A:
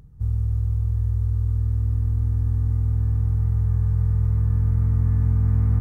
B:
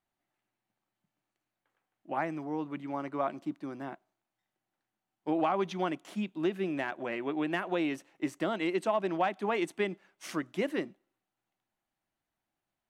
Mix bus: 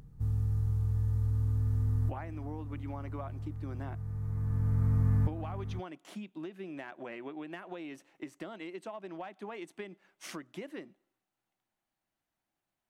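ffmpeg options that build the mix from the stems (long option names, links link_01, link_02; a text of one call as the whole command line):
ffmpeg -i stem1.wav -i stem2.wav -filter_complex "[0:a]equalizer=frequency=68:width=1.4:gain=-12,volume=-0.5dB[link_01];[1:a]acompressor=threshold=-38dB:ratio=10,volume=-1dB,asplit=2[link_02][link_03];[link_03]apad=whole_len=256144[link_04];[link_01][link_04]sidechaincompress=threshold=-52dB:ratio=8:attack=34:release=1060[link_05];[link_05][link_02]amix=inputs=2:normalize=0" out.wav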